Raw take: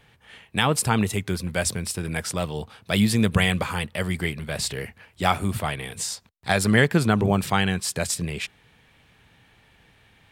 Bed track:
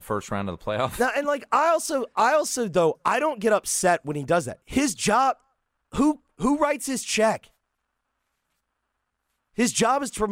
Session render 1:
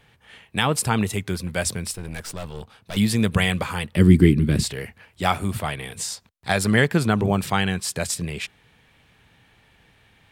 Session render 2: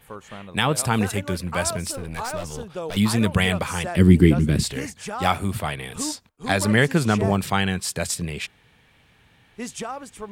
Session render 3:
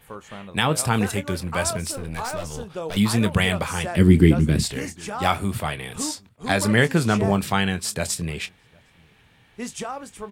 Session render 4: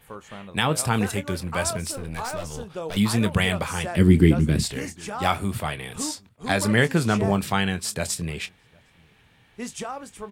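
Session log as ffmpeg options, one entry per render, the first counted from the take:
-filter_complex "[0:a]asettb=1/sr,asplit=3[s0][s1][s2];[s0]atrim=end=1.934[s3];[s1]atrim=start=1.93:end=2.97,asetpts=PTS-STARTPTS,afade=t=in:d=0.004:c=qsin,afade=t=out:st=1.036:d=0.004:c=qsin,aeval=exprs='(tanh(25.1*val(0)+0.7)-tanh(0.7))/25.1':c=same[s4];[s2]atrim=start=2.966[s5];[s3][s4]acrossfade=d=0.004:c1=hsin:c2=qsin[s6];[s6][s5]acrossfade=d=0.004:c1=qsin:c2=hsin,asettb=1/sr,asplit=3[s7][s8][s9];[s7]atrim=end=3.964[s10];[s8]atrim=start=3.96:end=4.64,asetpts=PTS-STARTPTS,afade=t=in:d=0.004:c=qsin,afade=t=out:st=0.676:d=0.004:c=qsin,lowshelf=f=450:t=q:w=3:g=12.5[s11];[s9]atrim=start=4.636[s12];[s10][s11]acrossfade=d=0.004:c1=hsin:c2=qsin[s13];[s13][s12]acrossfade=d=0.004:c1=qsin:c2=hsin"
-filter_complex "[1:a]volume=0.282[s0];[0:a][s0]amix=inputs=2:normalize=0"
-filter_complex "[0:a]asplit=2[s0][s1];[s1]adelay=25,volume=0.224[s2];[s0][s2]amix=inputs=2:normalize=0,asplit=2[s3][s4];[s4]adelay=758,volume=0.0316,highshelf=f=4000:g=-17.1[s5];[s3][s5]amix=inputs=2:normalize=0"
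-af "volume=0.841"

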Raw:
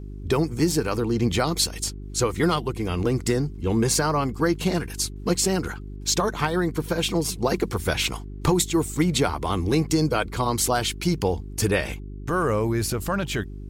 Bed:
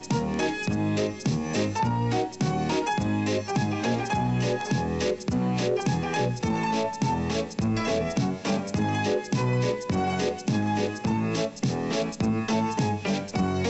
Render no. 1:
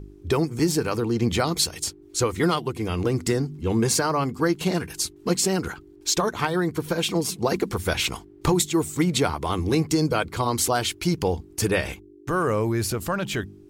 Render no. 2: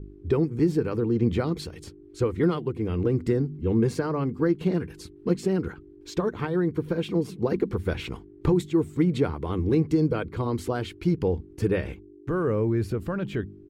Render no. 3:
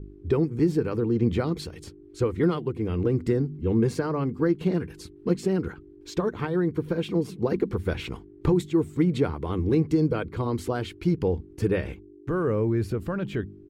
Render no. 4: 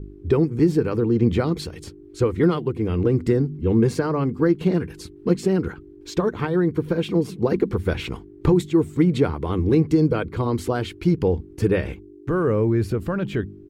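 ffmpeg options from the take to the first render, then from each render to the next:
-af "bandreject=f=50:t=h:w=4,bandreject=f=100:t=h:w=4,bandreject=f=150:t=h:w=4,bandreject=f=200:t=h:w=4,bandreject=f=250:t=h:w=4"
-af "firequalizer=gain_entry='entry(460,0);entry(670,-10);entry(1600,-8);entry(6200,-22)':delay=0.05:min_phase=1"
-af anull
-af "volume=1.68"

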